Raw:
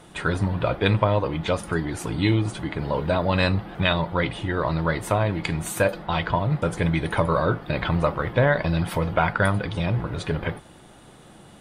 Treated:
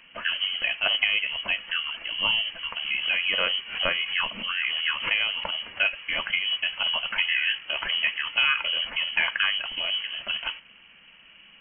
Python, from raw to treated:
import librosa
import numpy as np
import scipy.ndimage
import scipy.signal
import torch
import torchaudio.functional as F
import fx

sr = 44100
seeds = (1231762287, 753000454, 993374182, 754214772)

y = fx.low_shelf(x, sr, hz=91.0, db=-7.0)
y = fx.freq_invert(y, sr, carrier_hz=3100)
y = fx.pre_swell(y, sr, db_per_s=100.0, at=(2.85, 5.53))
y = F.gain(torch.from_numpy(y), -3.0).numpy()